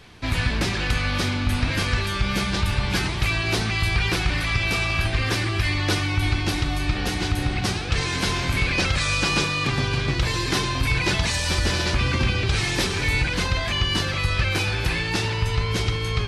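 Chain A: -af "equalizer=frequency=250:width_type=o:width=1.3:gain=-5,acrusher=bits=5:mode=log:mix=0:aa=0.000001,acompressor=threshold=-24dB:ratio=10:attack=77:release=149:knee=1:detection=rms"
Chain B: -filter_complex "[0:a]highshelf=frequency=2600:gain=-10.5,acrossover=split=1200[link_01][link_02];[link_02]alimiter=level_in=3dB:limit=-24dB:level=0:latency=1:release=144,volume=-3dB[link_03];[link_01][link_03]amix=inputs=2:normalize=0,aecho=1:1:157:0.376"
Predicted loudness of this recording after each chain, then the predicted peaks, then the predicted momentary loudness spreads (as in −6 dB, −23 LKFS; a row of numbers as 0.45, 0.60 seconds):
−25.0, −25.5 LKFS; −10.0, −9.0 dBFS; 2, 2 LU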